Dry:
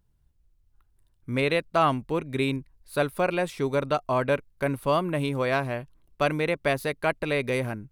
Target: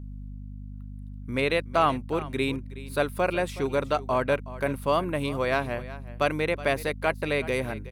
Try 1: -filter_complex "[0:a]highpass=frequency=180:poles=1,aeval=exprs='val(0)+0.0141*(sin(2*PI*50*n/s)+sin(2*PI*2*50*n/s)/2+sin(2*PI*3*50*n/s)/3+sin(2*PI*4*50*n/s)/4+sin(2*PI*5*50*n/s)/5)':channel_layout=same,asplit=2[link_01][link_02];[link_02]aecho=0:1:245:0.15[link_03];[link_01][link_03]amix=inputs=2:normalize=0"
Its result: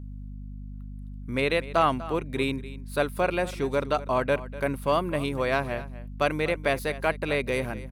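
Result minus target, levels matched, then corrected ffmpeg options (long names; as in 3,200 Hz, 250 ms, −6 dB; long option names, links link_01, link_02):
echo 126 ms early
-filter_complex "[0:a]highpass=frequency=180:poles=1,aeval=exprs='val(0)+0.0141*(sin(2*PI*50*n/s)+sin(2*PI*2*50*n/s)/2+sin(2*PI*3*50*n/s)/3+sin(2*PI*4*50*n/s)/4+sin(2*PI*5*50*n/s)/5)':channel_layout=same,asplit=2[link_01][link_02];[link_02]aecho=0:1:371:0.15[link_03];[link_01][link_03]amix=inputs=2:normalize=0"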